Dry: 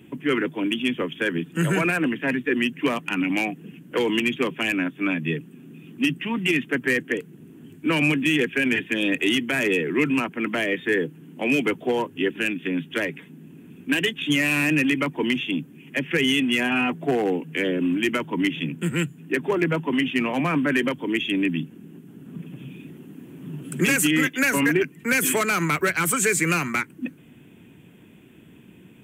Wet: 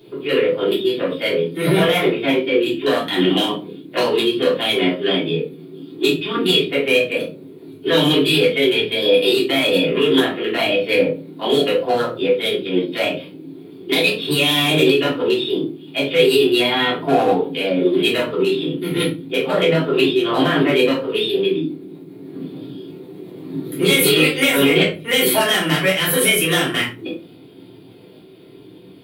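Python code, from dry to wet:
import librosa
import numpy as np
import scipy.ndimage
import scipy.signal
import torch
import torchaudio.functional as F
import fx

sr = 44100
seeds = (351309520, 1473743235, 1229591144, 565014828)

y = scipy.signal.sosfilt(scipy.signal.butter(2, 99.0, 'highpass', fs=sr, output='sos'), x)
y = fx.room_early_taps(y, sr, ms=(26, 50), db=(-6.0, -16.0))
y = fx.formant_shift(y, sr, semitones=5)
y = fx.room_shoebox(y, sr, seeds[0], volume_m3=160.0, walls='furnished', distance_m=3.3)
y = F.gain(torch.from_numpy(y), -2.5).numpy()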